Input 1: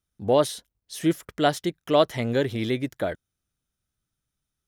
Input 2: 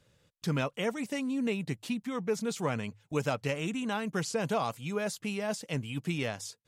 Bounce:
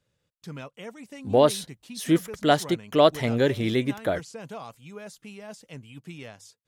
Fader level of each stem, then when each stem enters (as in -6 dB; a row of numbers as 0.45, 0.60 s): +1.5, -8.5 dB; 1.05, 0.00 s